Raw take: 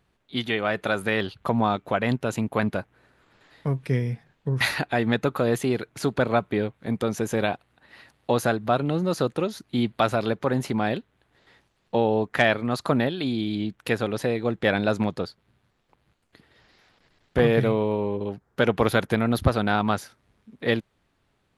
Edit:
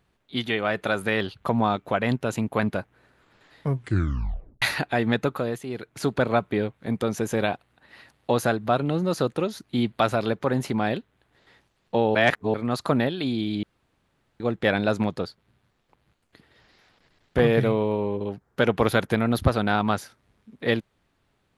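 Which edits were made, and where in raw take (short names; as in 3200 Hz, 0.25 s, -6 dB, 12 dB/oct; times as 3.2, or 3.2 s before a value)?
3.74 tape stop 0.88 s
5.22–6.06 dip -10.5 dB, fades 0.40 s
12.15–12.54 reverse
13.63–14.4 room tone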